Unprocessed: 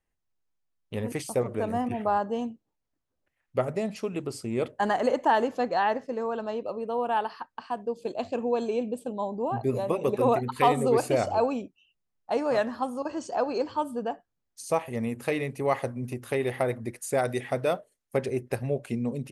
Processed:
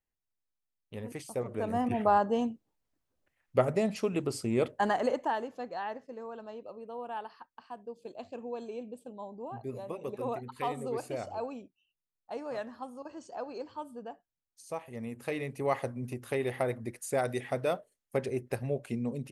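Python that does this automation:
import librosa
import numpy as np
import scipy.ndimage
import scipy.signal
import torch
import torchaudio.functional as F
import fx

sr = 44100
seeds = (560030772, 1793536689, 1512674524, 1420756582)

y = fx.gain(x, sr, db=fx.line((1.29, -9.0), (1.98, 1.0), (4.51, 1.0), (5.13, -5.0), (5.45, -12.0), (14.74, -12.0), (15.61, -4.0)))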